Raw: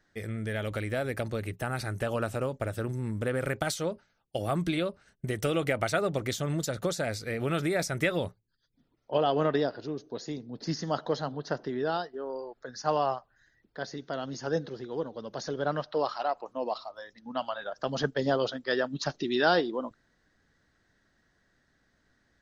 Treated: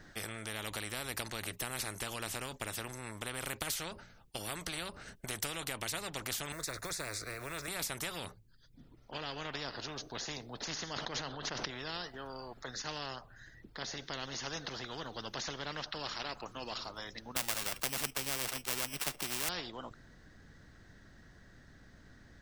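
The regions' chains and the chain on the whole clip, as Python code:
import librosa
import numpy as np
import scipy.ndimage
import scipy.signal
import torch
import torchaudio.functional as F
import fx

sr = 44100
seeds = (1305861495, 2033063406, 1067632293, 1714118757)

y = fx.chain(x, sr, fx.air_absorb(metres=58.0),
    fx.quant_companded(bits=8),
    fx.fixed_phaser(hz=830.0, stages=6), at=(6.52, 7.68))
y = fx.chain(y, sr, fx.air_absorb(metres=100.0),
    fx.sustainer(db_per_s=23.0), at=(10.93, 11.71))
y = fx.chain(y, sr, fx.sample_sort(block=16),
    fx.band_squash(depth_pct=40), at=(17.36, 19.49))
y = fx.low_shelf(y, sr, hz=180.0, db=11.5)
y = fx.rider(y, sr, range_db=3, speed_s=0.5)
y = fx.spectral_comp(y, sr, ratio=4.0)
y = y * librosa.db_to_amplitude(-2.5)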